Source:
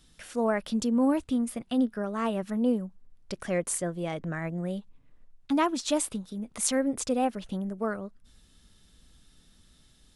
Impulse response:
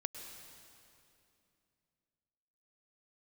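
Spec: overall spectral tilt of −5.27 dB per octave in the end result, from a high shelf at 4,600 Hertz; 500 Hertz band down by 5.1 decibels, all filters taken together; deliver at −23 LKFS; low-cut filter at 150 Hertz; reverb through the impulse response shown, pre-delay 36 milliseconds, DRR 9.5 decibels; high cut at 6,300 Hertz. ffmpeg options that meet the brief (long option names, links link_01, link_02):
-filter_complex "[0:a]highpass=150,lowpass=6300,equalizer=frequency=500:width_type=o:gain=-6,highshelf=frequency=4600:gain=-5,asplit=2[link_01][link_02];[1:a]atrim=start_sample=2205,adelay=36[link_03];[link_02][link_03]afir=irnorm=-1:irlink=0,volume=-8.5dB[link_04];[link_01][link_04]amix=inputs=2:normalize=0,volume=9dB"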